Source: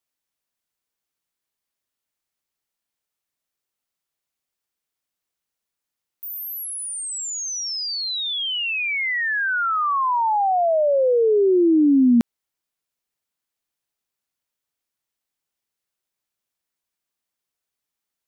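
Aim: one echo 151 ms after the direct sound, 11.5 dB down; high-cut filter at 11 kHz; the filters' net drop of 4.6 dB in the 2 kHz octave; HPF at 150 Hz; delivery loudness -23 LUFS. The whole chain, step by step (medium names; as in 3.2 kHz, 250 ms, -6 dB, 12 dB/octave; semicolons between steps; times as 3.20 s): high-pass 150 Hz; low-pass 11 kHz; peaking EQ 2 kHz -6 dB; delay 151 ms -11.5 dB; trim -2 dB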